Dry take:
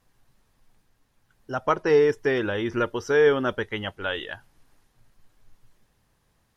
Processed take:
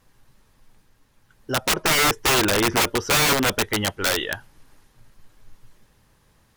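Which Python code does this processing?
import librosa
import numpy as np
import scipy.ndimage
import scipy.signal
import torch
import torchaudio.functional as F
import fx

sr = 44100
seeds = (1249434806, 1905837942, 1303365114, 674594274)

p1 = fx.notch(x, sr, hz=710.0, q=12.0)
p2 = fx.rider(p1, sr, range_db=3, speed_s=0.5)
p3 = p1 + F.gain(torch.from_numpy(p2), 0.5).numpy()
y = (np.mod(10.0 ** (13.5 / 20.0) * p3 + 1.0, 2.0) - 1.0) / 10.0 ** (13.5 / 20.0)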